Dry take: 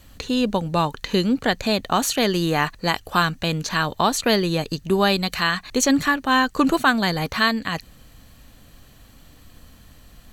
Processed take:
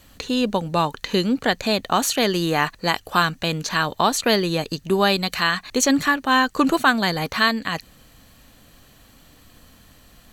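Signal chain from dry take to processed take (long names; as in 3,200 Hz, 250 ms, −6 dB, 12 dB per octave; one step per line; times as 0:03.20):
low-shelf EQ 130 Hz −7.5 dB
level +1 dB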